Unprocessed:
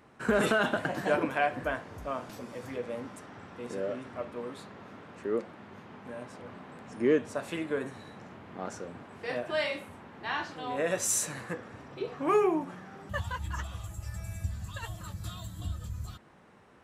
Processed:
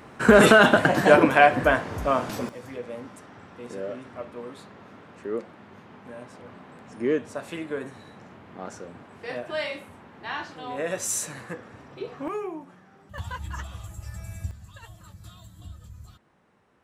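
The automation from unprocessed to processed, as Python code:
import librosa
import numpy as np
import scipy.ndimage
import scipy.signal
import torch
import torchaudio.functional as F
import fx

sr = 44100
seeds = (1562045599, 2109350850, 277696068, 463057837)

y = fx.gain(x, sr, db=fx.steps((0.0, 12.0), (2.49, 0.5), (12.28, -7.5), (13.18, 1.0), (14.51, -6.5)))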